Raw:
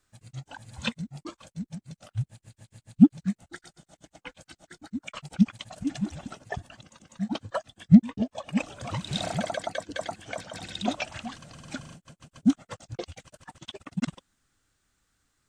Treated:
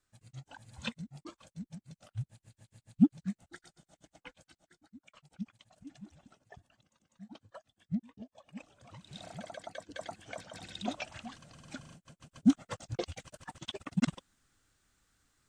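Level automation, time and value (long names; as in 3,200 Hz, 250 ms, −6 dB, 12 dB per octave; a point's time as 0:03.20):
0:04.27 −8 dB
0:04.92 −20 dB
0:08.92 −20 dB
0:10.14 −8 dB
0:11.82 −8 dB
0:12.79 0 dB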